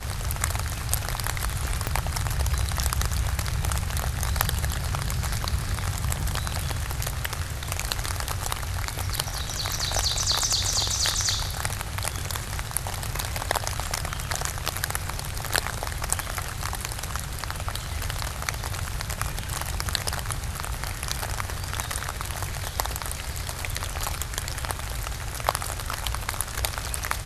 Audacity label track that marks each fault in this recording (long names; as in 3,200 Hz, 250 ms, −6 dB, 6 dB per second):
1.870000	1.870000	click −9 dBFS
6.210000	6.210000	drop-out 2.4 ms